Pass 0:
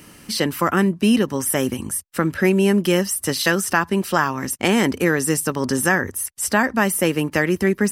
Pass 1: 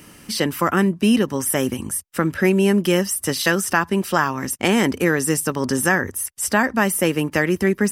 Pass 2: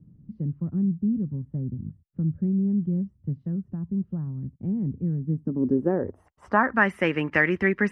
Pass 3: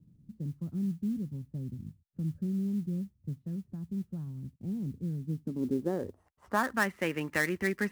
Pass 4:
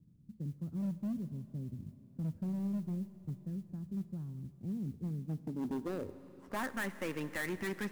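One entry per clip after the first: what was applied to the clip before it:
band-stop 4.2 kHz, Q 19
low-pass sweep 150 Hz -> 2.1 kHz, 5.16–6.94 s; trim -5.5 dB
dead-time distortion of 0.065 ms; modulation noise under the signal 33 dB; trim -8 dB
overload inside the chain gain 29 dB; on a send at -13.5 dB: reverberation RT60 4.2 s, pre-delay 33 ms; on the sum: trim -3.5 dB

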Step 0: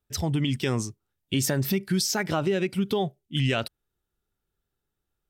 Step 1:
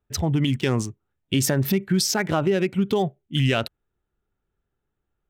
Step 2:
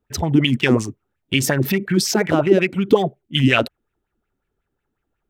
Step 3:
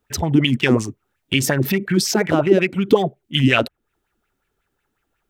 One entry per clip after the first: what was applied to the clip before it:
local Wiener filter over 9 samples; trim +4 dB
sweeping bell 5.5 Hz 230–2600 Hz +14 dB; trim +1 dB
tape noise reduction on one side only encoder only

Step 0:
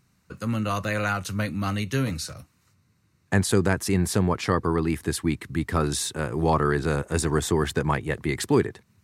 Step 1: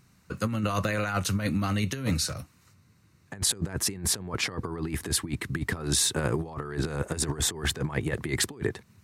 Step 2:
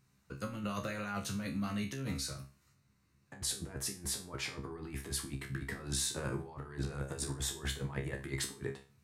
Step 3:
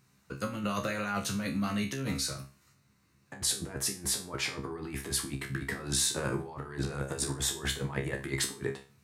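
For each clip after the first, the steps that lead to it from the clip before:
compressor with a negative ratio -28 dBFS, ratio -0.5
feedback comb 68 Hz, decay 0.33 s, harmonics all, mix 90%; trim -2.5 dB
bass shelf 96 Hz -9 dB; trim +6.5 dB

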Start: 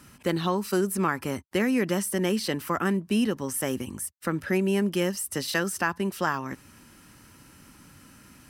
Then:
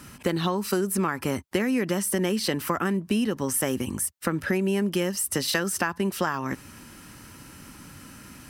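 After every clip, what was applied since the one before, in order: compression, threshold -28 dBFS, peak gain reduction 8.5 dB; trim +6.5 dB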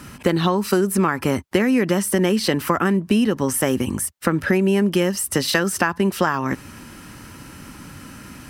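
treble shelf 4.3 kHz -5 dB; trim +7 dB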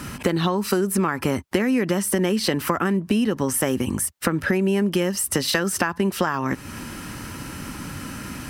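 compression 2:1, threshold -30 dBFS, peak gain reduction 9.5 dB; trim +5.5 dB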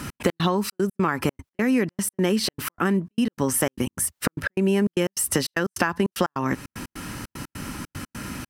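trance gate "x.x.xxx.x.xx" 151 bpm -60 dB

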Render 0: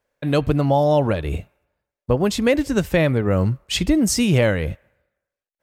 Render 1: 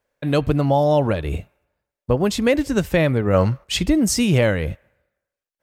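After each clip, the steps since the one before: time-frequency box 3.34–3.64 s, 460–6600 Hz +8 dB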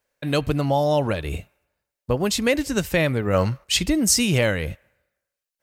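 treble shelf 2 kHz +9 dB; band-stop 3.4 kHz, Q 27; trim -4 dB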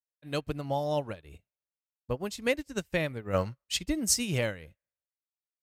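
upward expansion 2.5:1, over -36 dBFS; trim -5.5 dB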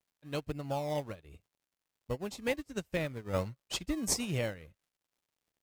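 crackle 190 per s -61 dBFS; in parallel at -9 dB: decimation with a swept rate 25×, swing 60% 1.3 Hz; on the sum: trim -6 dB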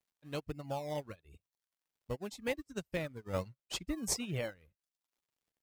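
reverb removal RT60 0.58 s; trim -3 dB

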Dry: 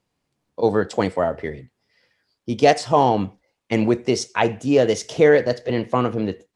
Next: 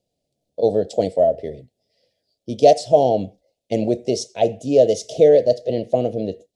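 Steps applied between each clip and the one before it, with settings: FFT filter 350 Hz 0 dB, 650 Hz +11 dB, 1.1 kHz -28 dB, 3.6 kHz +2 dB; trim -3 dB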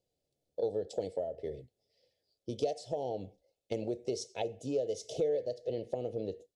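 compression 4:1, threshold -25 dBFS, peak gain reduction 15 dB; comb 2.3 ms, depth 39%; trim -8 dB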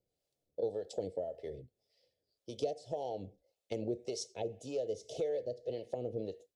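harmonic tremolo 1.8 Hz, depth 70%, crossover 550 Hz; trim +1 dB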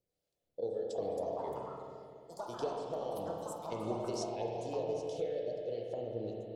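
spring tank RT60 3.1 s, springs 34/46 ms, chirp 40 ms, DRR -1 dB; ever faster or slower copies 538 ms, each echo +6 st, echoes 2, each echo -6 dB; trim -3 dB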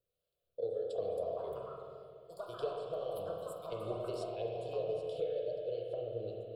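static phaser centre 1.3 kHz, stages 8; trim +1 dB

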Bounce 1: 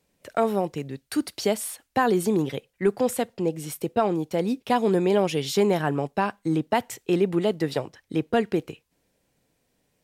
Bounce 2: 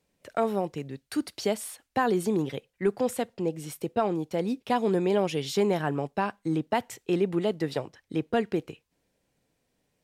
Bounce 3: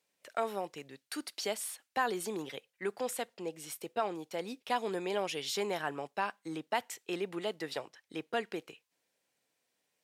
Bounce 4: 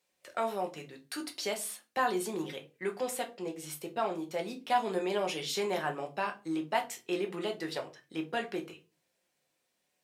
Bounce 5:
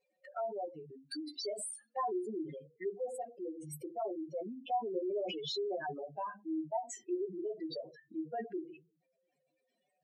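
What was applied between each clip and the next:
treble shelf 11 kHz -6 dB; trim -3.5 dB
high-pass 1.1 kHz 6 dB/octave; trim -1 dB
simulated room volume 120 m³, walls furnished, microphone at 0.98 m
spectral contrast enhancement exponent 4; dynamic bell 910 Hz, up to -4 dB, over -46 dBFS, Q 0.79; trim -1.5 dB

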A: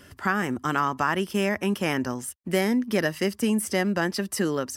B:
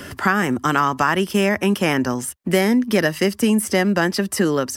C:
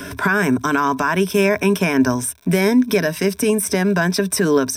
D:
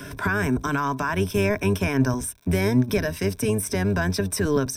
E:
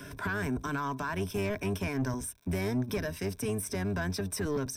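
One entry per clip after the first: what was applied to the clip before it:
three bands compressed up and down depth 40%; trim +6.5 dB
crackle 110 per s -37 dBFS; peak limiter -10.5 dBFS, peak gain reduction 7 dB; rippled EQ curve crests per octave 1.6, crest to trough 12 dB; trim +2 dB
octave divider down 1 oct, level -1 dB; trim -7 dB
saturation -16.5 dBFS, distortion -15 dB; trim -7.5 dB

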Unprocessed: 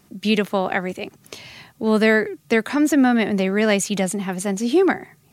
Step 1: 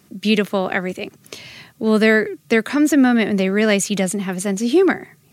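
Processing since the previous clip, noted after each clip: high-pass 80 Hz; peaking EQ 850 Hz -6 dB 0.52 oct; trim +2.5 dB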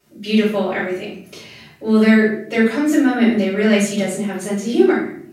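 reverberation RT60 0.60 s, pre-delay 4 ms, DRR -10 dB; trim -16.5 dB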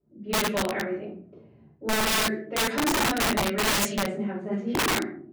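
level-controlled noise filter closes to 390 Hz, open at -10.5 dBFS; integer overflow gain 12 dB; trim -7 dB

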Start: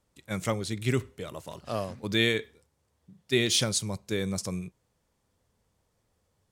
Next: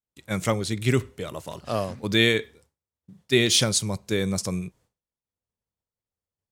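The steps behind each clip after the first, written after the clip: expander -57 dBFS; trim +5 dB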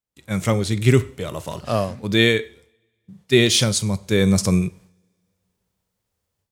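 harmonic-percussive split harmonic +6 dB; two-slope reverb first 0.61 s, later 2 s, from -25 dB, DRR 19 dB; level rider gain up to 12 dB; trim -1 dB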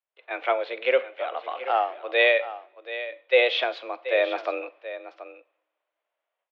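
delay 730 ms -13.5 dB; mistuned SSB +130 Hz 370–3000 Hz

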